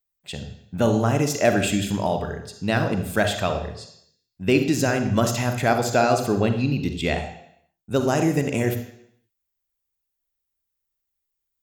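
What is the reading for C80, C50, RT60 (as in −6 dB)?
11.0 dB, 8.0 dB, 0.70 s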